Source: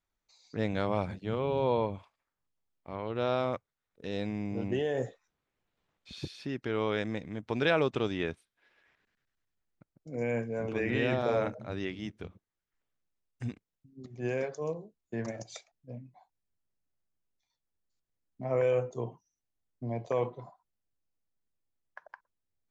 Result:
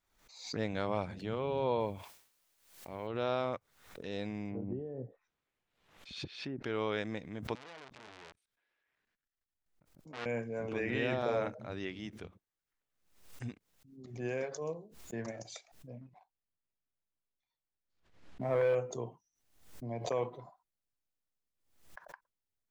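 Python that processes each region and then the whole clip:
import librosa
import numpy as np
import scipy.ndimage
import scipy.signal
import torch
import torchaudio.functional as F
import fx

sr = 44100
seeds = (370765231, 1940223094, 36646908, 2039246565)

y = fx.chain(x, sr, fx.peak_eq(hz=1200.0, db=-7.5, octaves=0.34),
    fx.quant_dither(seeds[0], bits=12, dither='triangular'),
    fx.sustainer(db_per_s=92.0), at=(1.8, 3.07))
y = fx.chain(y, sr, fx.env_lowpass_down(base_hz=300.0, full_db=-29.0),
    fx.peak_eq(hz=2700.0, db=3.0, octaves=1.5), at=(4.48, 6.64))
y = fx.chain(y, sr, fx.doubler(ms=23.0, db=-13.0),
    fx.level_steps(step_db=20),
    fx.transformer_sat(knee_hz=3400.0), at=(7.55, 10.26))
y = fx.chain(y, sr, fx.lowpass(hz=3400.0, slope=12),
    fx.leveller(passes=1), at=(16.01, 18.75))
y = fx.low_shelf(y, sr, hz=320.0, db=-3.5)
y = fx.pre_swell(y, sr, db_per_s=88.0)
y = y * librosa.db_to_amplitude(-3.0)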